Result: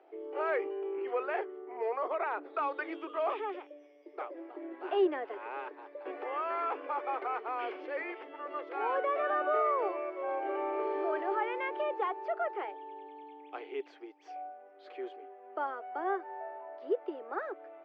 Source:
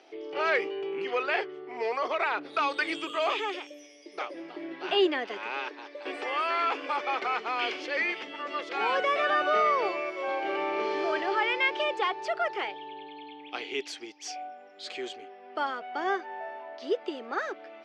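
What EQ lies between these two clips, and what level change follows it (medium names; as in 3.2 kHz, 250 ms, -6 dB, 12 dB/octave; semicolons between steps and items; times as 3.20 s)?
steep high-pass 310 Hz 36 dB/octave; low-pass 1.2 kHz 12 dB/octave; -2.5 dB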